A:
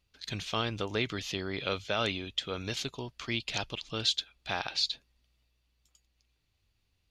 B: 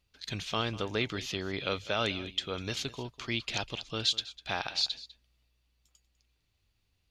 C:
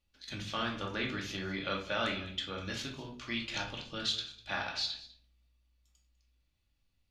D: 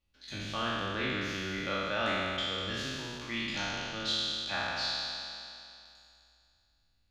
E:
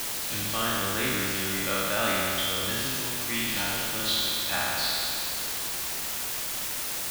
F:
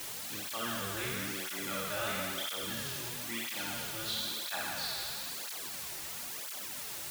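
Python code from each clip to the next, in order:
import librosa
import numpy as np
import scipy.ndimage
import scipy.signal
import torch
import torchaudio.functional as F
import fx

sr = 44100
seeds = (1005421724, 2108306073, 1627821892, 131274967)

y1 = x + 10.0 ** (-18.0 / 20.0) * np.pad(x, (int(199 * sr / 1000.0), 0))[:len(x)]
y2 = fx.dynamic_eq(y1, sr, hz=1600.0, q=1.6, threshold_db=-48.0, ratio=4.0, max_db=7)
y2 = fx.room_shoebox(y2, sr, seeds[0], volume_m3=470.0, walls='furnished', distance_m=2.4)
y2 = y2 * librosa.db_to_amplitude(-8.0)
y3 = fx.spec_trails(y2, sr, decay_s=2.6)
y3 = fx.high_shelf(y3, sr, hz=5100.0, db=-5.0)
y3 = y3 * librosa.db_to_amplitude(-1.5)
y4 = fx.quant_dither(y3, sr, seeds[1], bits=6, dither='triangular')
y4 = y4 * librosa.db_to_amplitude(4.0)
y5 = fx.flanger_cancel(y4, sr, hz=1.0, depth_ms=4.6)
y5 = y5 * librosa.db_to_amplitude(-6.0)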